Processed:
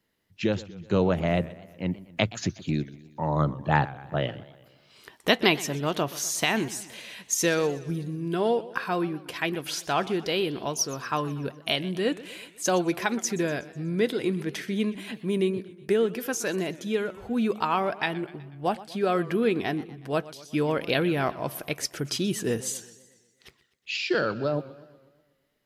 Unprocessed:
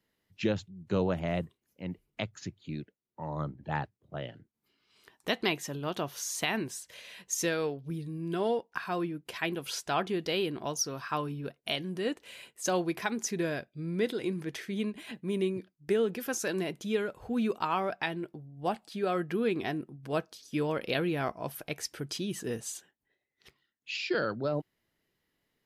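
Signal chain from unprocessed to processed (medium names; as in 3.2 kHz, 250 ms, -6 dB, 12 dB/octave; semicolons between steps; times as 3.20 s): gain riding 2 s; modulated delay 123 ms, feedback 55%, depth 165 cents, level -18 dB; trim +4.5 dB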